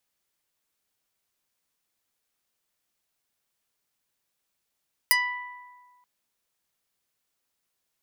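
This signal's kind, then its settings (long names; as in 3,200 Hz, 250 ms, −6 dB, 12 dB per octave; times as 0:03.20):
Karplus-Strong string B5, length 0.93 s, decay 1.66 s, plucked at 0.25, medium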